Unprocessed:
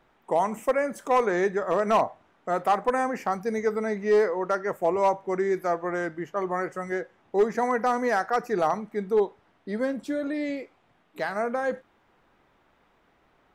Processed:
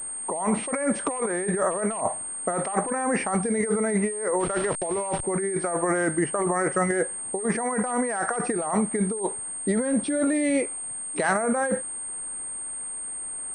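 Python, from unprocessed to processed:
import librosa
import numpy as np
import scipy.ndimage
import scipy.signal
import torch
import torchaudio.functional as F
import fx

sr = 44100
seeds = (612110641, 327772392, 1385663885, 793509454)

y = fx.delta_hold(x, sr, step_db=-37.0, at=(4.39, 5.22), fade=0.02)
y = fx.over_compress(y, sr, threshold_db=-32.0, ratio=-1.0)
y = fx.pwm(y, sr, carrier_hz=8600.0)
y = y * librosa.db_to_amplitude(6.0)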